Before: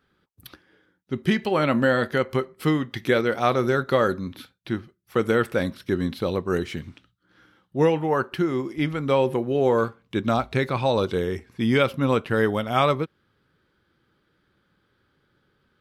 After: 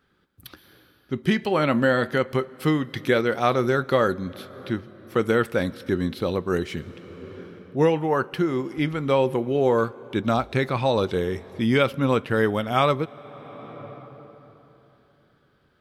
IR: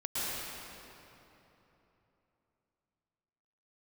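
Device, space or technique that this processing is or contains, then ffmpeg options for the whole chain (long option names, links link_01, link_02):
ducked reverb: -filter_complex "[0:a]asplit=3[link_01][link_02][link_03];[1:a]atrim=start_sample=2205[link_04];[link_02][link_04]afir=irnorm=-1:irlink=0[link_05];[link_03]apad=whole_len=697032[link_06];[link_05][link_06]sidechaincompress=threshold=-40dB:ratio=6:attack=28:release=542,volume=-12dB[link_07];[link_01][link_07]amix=inputs=2:normalize=0"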